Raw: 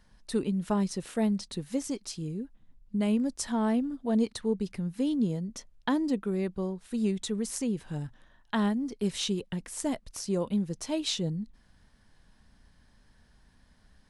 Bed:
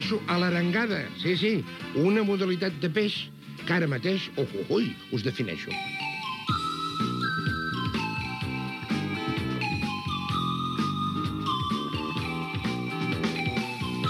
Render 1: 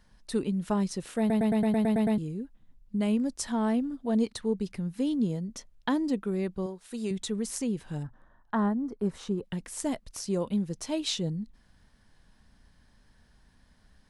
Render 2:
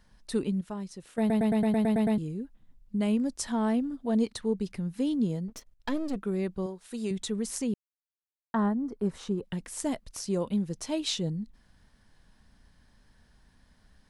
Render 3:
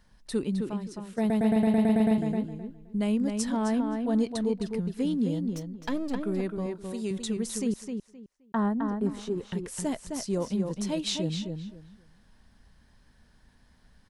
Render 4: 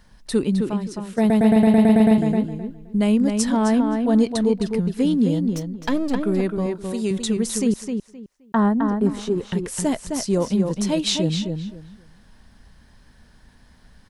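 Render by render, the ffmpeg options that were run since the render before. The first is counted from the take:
-filter_complex "[0:a]asettb=1/sr,asplit=3[s0][s1][s2];[s0]atrim=end=6.664[s3];[s1]atrim=start=6.66:end=7.11,asetpts=PTS-STARTPTS,afade=t=in:d=0.004:c=qsin,afade=t=out:st=0.446:d=0.004:c=qsin,bass=f=250:g=-10,treble=f=4000:g=3[s4];[s2]atrim=start=7.106[s5];[s3][s4]acrossfade=d=0.004:c1=hsin:c2=qsin[s6];[s6][s5]acrossfade=d=0.004:c1=qsin:c2=hsin,asettb=1/sr,asplit=3[s7][s8][s9];[s7]atrim=end=8.034[s10];[s8]atrim=start=8.03:end=9.43,asetpts=PTS-STARTPTS,afade=t=in:d=0.004:c=qsin,afade=t=out:st=1.396:d=0.004:c=qsin,highshelf=f=1900:t=q:w=1.5:g=-13[s11];[s9]atrim=start=9.426[s12];[s10][s11]acrossfade=d=0.004:c1=hsin:c2=qsin[s13];[s13][s12]acrossfade=d=0.004:c1=qsin:c2=hsin,asplit=10[s14][s15][s16][s17][s18][s19][s20][s21][s22][s23];[s14]atrim=end=1.302[s24];[s15]atrim=start=1.188:end=1.302[s25];[s16]atrim=start=1.188:end=1.302[s26];[s17]atrim=start=1.188:end=1.302[s27];[s18]atrim=start=1.188:end=1.302[s28];[s19]atrim=start=1.188:end=1.302[s29];[s20]atrim=start=1.188:end=1.302[s30];[s21]atrim=start=1.188:end=1.302[s31];[s22]atrim=start=1.188:end=1.302[s32];[s23]atrim=start=2.178[s33];[s24][s25]acrossfade=d=0.004:c1=hsin:c2=hsin[s34];[s34][s26]acrossfade=d=0.004:c1=hsin:c2=hsin[s35];[s35][s27]acrossfade=d=0.004:c1=hsin:c2=hsin[s36];[s36][s28]acrossfade=d=0.004:c1=hsin:c2=hsin[s37];[s37][s29]acrossfade=d=0.004:c1=hsin:c2=hsin[s38];[s38][s30]acrossfade=d=0.004:c1=hsin:c2=hsin[s39];[s39][s31]acrossfade=d=0.004:c1=hsin:c2=hsin[s40];[s40][s32]acrossfade=d=0.004:c1=hsin:c2=hsin[s41];[s41][s33]acrossfade=d=0.004:c1=hsin:c2=hsin"
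-filter_complex "[0:a]asettb=1/sr,asplit=3[s0][s1][s2];[s0]atrim=end=5.484[s3];[s1]atrim=start=5.48:end=6.16,asetpts=PTS-STARTPTS,afade=t=in:d=0.004:c=qsin,afade=t=out:st=0.676:d=0.004:c=qsin,aeval=exprs='if(lt(val(0),0),0.251*val(0),val(0))':c=same[s4];[s2]atrim=start=6.156[s5];[s3][s4]acrossfade=d=0.004:c1=hsin:c2=qsin[s6];[s6][s5]acrossfade=d=0.004:c1=qsin:c2=hsin,asplit=5[s7][s8][s9][s10][s11];[s7]atrim=end=0.612[s12];[s8]atrim=start=0.608:end=1.182,asetpts=PTS-STARTPTS,volume=0.335[s13];[s9]atrim=start=1.178:end=7.74,asetpts=PTS-STARTPTS,afade=t=out:st=6.558:d=0.004:c=hsin[s14];[s10]atrim=start=7.74:end=8.54,asetpts=PTS-STARTPTS,volume=0[s15];[s11]atrim=start=8.54,asetpts=PTS-STARTPTS,afade=t=in:d=0.004:c=hsin[s16];[s12][s13]acrossfade=d=0.004:c1=hsin:c2=hsin[s17];[s14][s15][s16]concat=n=3:v=0:a=1[s18];[s17][s18]acrossfade=d=0.004:c1=hsin:c2=hsin"
-filter_complex "[0:a]asplit=2[s0][s1];[s1]adelay=261,lowpass=f=4000:p=1,volume=0.562,asplit=2[s2][s3];[s3]adelay=261,lowpass=f=4000:p=1,volume=0.22,asplit=2[s4][s5];[s5]adelay=261,lowpass=f=4000:p=1,volume=0.22[s6];[s0][s2][s4][s6]amix=inputs=4:normalize=0"
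-af "volume=2.66"

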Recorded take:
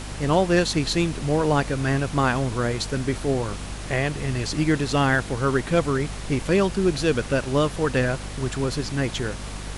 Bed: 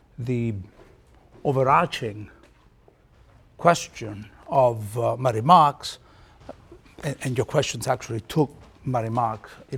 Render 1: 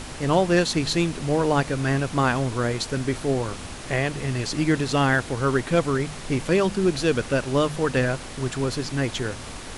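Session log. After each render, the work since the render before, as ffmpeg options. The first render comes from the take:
-af "bandreject=f=50:t=h:w=4,bandreject=f=100:t=h:w=4,bandreject=f=150:t=h:w=4,bandreject=f=200:t=h:w=4"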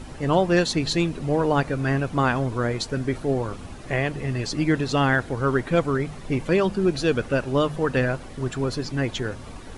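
-af "afftdn=nr=11:nf=-37"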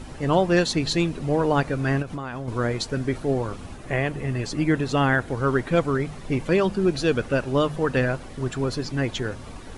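-filter_complex "[0:a]asettb=1/sr,asplit=3[s0][s1][s2];[s0]atrim=end=2.024[s3];[s1]atrim=start=2.02:end=2.48,asetpts=PTS-STARTPTS,afade=t=in:d=0.004:c=qsin,afade=t=out:st=0.456:d=0.004:c=qsin,acompressor=threshold=0.0447:ratio=16:attack=3.2:release=140:knee=1:detection=peak[s4];[s2]atrim=start=2.476[s5];[s3][s4]acrossfade=d=0.004:c1=hsin:c2=qsin[s6];[s6][s5]acrossfade=d=0.004:c1=qsin:c2=hsin,asettb=1/sr,asplit=3[s7][s8][s9];[s7]atrim=end=3.764[s10];[s8]atrim=start=3.76:end=5.28,asetpts=PTS-STARTPTS,afade=t=in:d=0.004:c=qsin,afade=t=out:st=1.516:d=0.004:c=qsin,equalizer=f=4700:t=o:w=1:g=-4.5[s11];[s9]atrim=start=5.276[s12];[s10][s11]acrossfade=d=0.004:c1=hsin:c2=qsin[s13];[s13][s12]acrossfade=d=0.004:c1=qsin:c2=hsin"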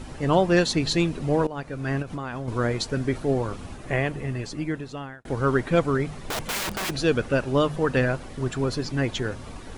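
-filter_complex "[0:a]asplit=3[s0][s1][s2];[s0]afade=t=out:st=6.16:d=0.02[s3];[s1]aeval=exprs='(mod(15*val(0)+1,2)-1)/15':c=same,afade=t=in:st=6.16:d=0.02,afade=t=out:st=6.89:d=0.02[s4];[s2]afade=t=in:st=6.89:d=0.02[s5];[s3][s4][s5]amix=inputs=3:normalize=0,asplit=3[s6][s7][s8];[s6]atrim=end=1.47,asetpts=PTS-STARTPTS,afade=t=out:st=1.466:d=0.004:c=hsin:silence=0.125893[s9];[s7]atrim=start=1.47:end=5.25,asetpts=PTS-STARTPTS,afade=t=in:d=0.75:silence=0.125893,afade=t=out:st=2.48:d=1.3[s10];[s8]atrim=start=5.25,asetpts=PTS-STARTPTS,afade=t=in:d=0.004:c=hsin[s11];[s9][s10][s11]concat=n=3:v=0:a=1"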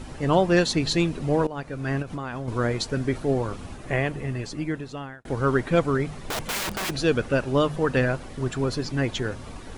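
-af anull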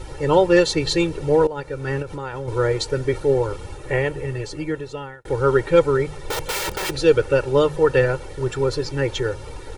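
-af "equalizer=f=500:t=o:w=0.77:g=3.5,aecho=1:1:2.2:0.95"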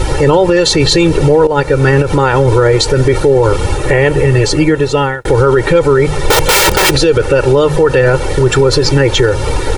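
-filter_complex "[0:a]asplit=2[s0][s1];[s1]acompressor=threshold=0.0501:ratio=6,volume=1.26[s2];[s0][s2]amix=inputs=2:normalize=0,alimiter=level_in=5.01:limit=0.891:release=50:level=0:latency=1"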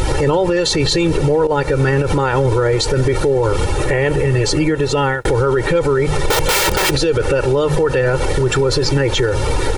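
-af "acompressor=mode=upward:threshold=0.282:ratio=2.5,alimiter=limit=0.422:level=0:latency=1:release=85"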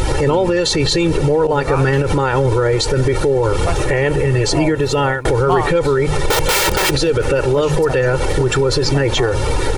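-filter_complex "[1:a]volume=0.531[s0];[0:a][s0]amix=inputs=2:normalize=0"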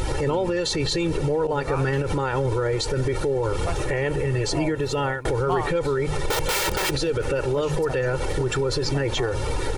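-af "volume=0.376"

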